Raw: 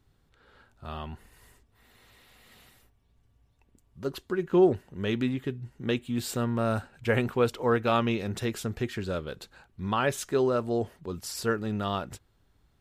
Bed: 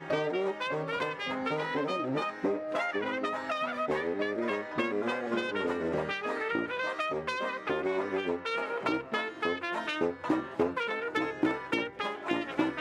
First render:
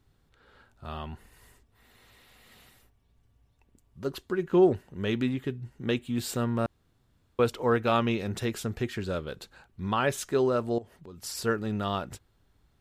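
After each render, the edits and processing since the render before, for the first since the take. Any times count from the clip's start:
0:06.66–0:07.39: fill with room tone
0:10.78–0:11.21: downward compressor 3 to 1, threshold −46 dBFS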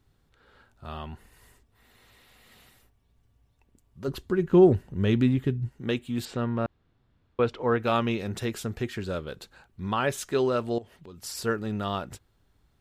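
0:04.08–0:05.69: low-shelf EQ 230 Hz +12 dB
0:06.25–0:07.80: low-pass filter 3,500 Hz
0:10.31–0:11.13: parametric band 3,000 Hz +6.5 dB 1.3 octaves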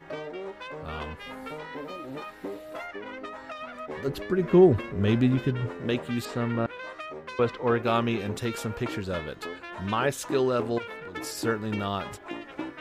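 mix in bed −6.5 dB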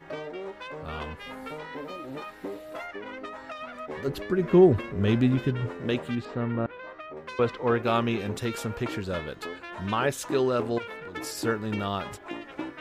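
0:06.15–0:07.17: head-to-tape spacing loss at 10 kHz 24 dB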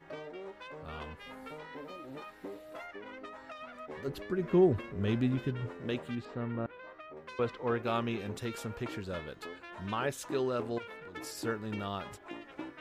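level −7.5 dB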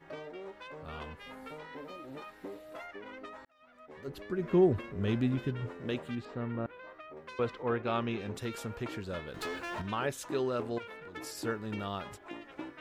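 0:03.45–0:04.50: fade in
0:07.62–0:08.33: low-pass filter 3,000 Hz → 7,700 Hz
0:09.34–0:09.82: leveller curve on the samples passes 3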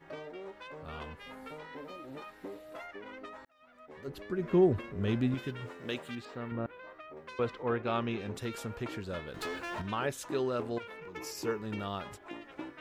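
0:05.34–0:06.52: spectral tilt +2 dB per octave
0:10.98–0:11.62: EQ curve with evenly spaced ripples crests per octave 0.78, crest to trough 8 dB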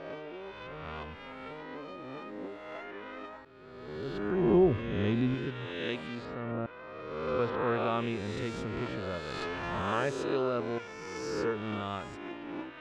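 peak hold with a rise ahead of every peak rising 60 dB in 1.52 s
high-frequency loss of the air 120 metres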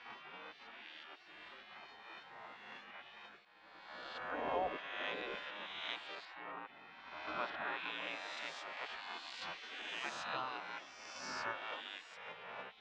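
gate on every frequency bin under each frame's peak −15 dB weak
three-way crossover with the lows and the highs turned down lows −19 dB, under 210 Hz, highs −20 dB, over 6,600 Hz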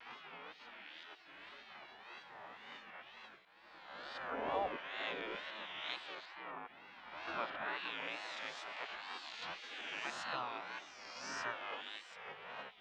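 tape wow and flutter 140 cents

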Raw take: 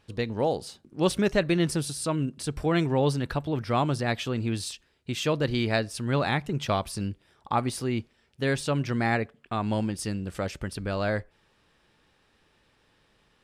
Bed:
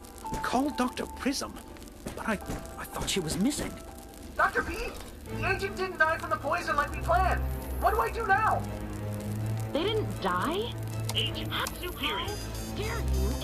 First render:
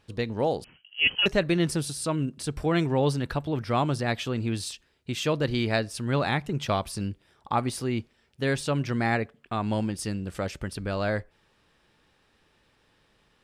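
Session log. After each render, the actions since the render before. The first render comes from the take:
0:00.64–0:01.26: voice inversion scrambler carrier 3,100 Hz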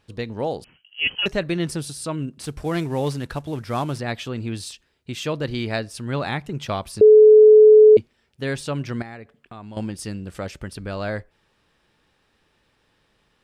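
0:02.42–0:03.99: variable-slope delta modulation 64 kbit/s
0:07.01–0:07.97: beep over 429 Hz −6 dBFS
0:09.02–0:09.77: downward compressor 3 to 1, threshold −38 dBFS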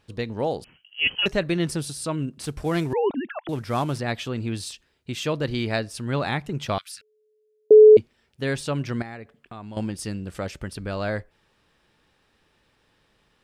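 0:02.93–0:03.49: three sine waves on the formant tracks
0:06.78–0:07.71: elliptic high-pass filter 1,400 Hz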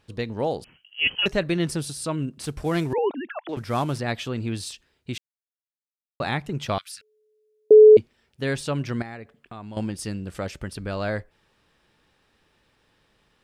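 0:02.98–0:03.57: three-way crossover with the lows and the highs turned down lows −22 dB, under 250 Hz, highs −21 dB, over 5,700 Hz
0:05.18–0:06.20: silence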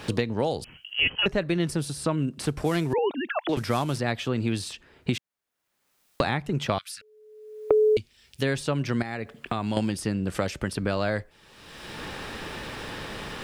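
multiband upward and downward compressor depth 100%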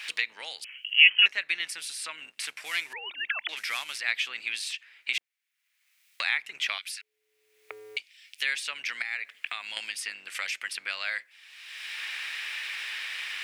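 sub-octave generator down 2 octaves, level +3 dB
high-pass with resonance 2,200 Hz, resonance Q 3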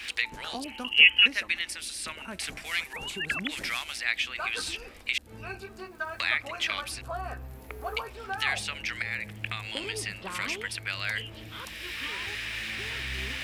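mix in bed −10.5 dB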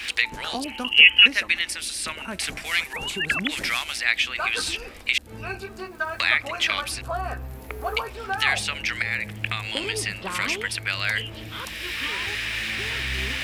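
level +6.5 dB
brickwall limiter −2 dBFS, peak gain reduction 3 dB

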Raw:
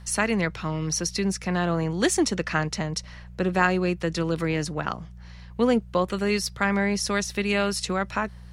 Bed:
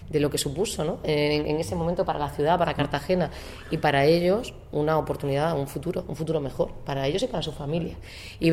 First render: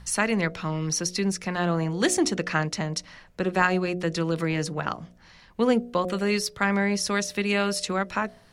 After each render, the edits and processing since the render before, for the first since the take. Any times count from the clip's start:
hum removal 60 Hz, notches 12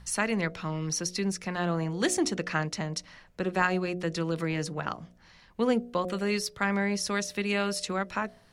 level −4 dB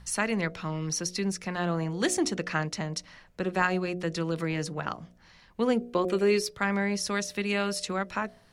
0:05.81–0:06.51: hollow resonant body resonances 380/2,400 Hz, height 11 dB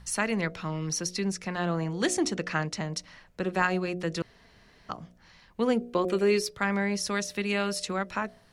0:01.13–0:02.84: low-pass filter 11,000 Hz
0:04.22–0:04.89: fill with room tone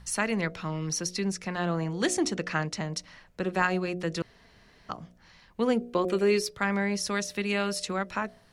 no processing that can be heard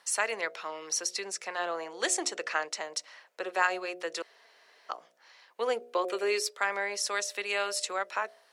high-pass filter 460 Hz 24 dB per octave
dynamic equaliser 7,700 Hz, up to +6 dB, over −55 dBFS, Q 4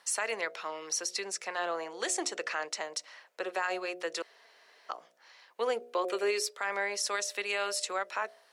brickwall limiter −21 dBFS, peak gain reduction 8.5 dB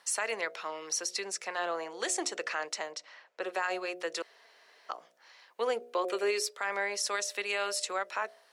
0:02.92–0:03.42: high-frequency loss of the air 93 metres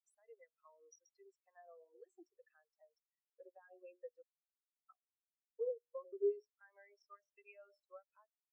downward compressor 6 to 1, threshold −40 dBFS, peak gain reduction 13 dB
every bin expanded away from the loudest bin 4 to 1

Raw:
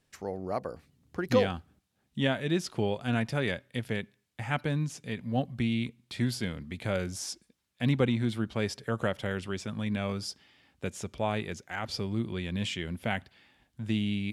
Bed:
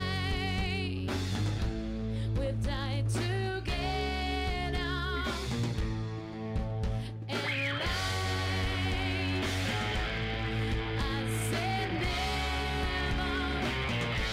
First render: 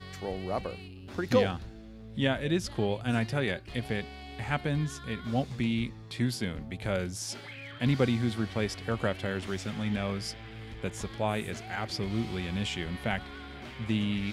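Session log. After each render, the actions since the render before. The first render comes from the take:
mix in bed −12 dB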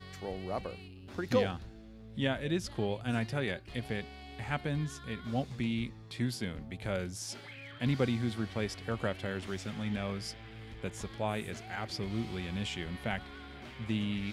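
level −4 dB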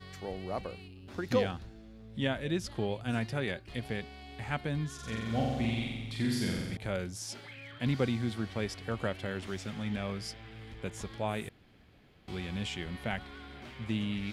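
0:04.94–0:06.77: flutter between parallel walls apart 7.7 metres, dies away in 1.3 s
0:11.49–0:12.28: fill with room tone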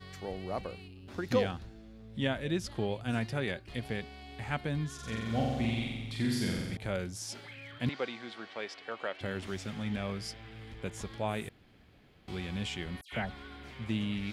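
0:07.89–0:09.21: band-pass filter 510–4,600 Hz
0:13.01–0:13.71: all-pass dispersion lows, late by 112 ms, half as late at 2,700 Hz

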